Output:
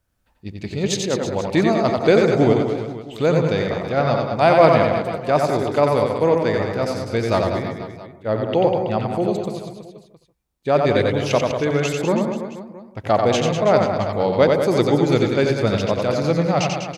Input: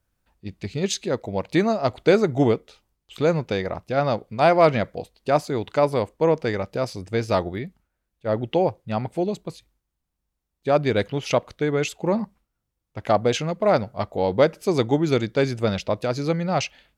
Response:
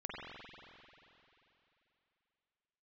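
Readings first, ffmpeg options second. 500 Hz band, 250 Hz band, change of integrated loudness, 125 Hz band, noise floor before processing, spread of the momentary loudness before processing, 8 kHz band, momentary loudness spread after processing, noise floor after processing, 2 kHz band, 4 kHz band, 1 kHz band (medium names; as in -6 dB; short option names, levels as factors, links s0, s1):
+4.0 dB, +4.0 dB, +4.0 dB, +4.5 dB, -80 dBFS, 12 LU, +4.0 dB, 13 LU, -59 dBFS, +4.0 dB, +4.0 dB, +4.0 dB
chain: -filter_complex "[0:a]aecho=1:1:90|198|327.6|483.1|669.7:0.631|0.398|0.251|0.158|0.1,asplit=2[s0][s1];[1:a]atrim=start_sample=2205,afade=t=out:st=0.15:d=0.01,atrim=end_sample=7056,asetrate=27783,aresample=44100[s2];[s1][s2]afir=irnorm=-1:irlink=0,volume=0.501[s3];[s0][s3]amix=inputs=2:normalize=0,volume=0.891"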